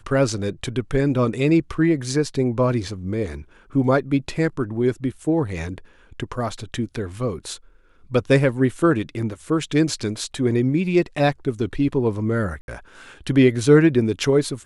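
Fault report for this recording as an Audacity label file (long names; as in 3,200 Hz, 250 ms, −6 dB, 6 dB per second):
12.610000	12.680000	drop-out 71 ms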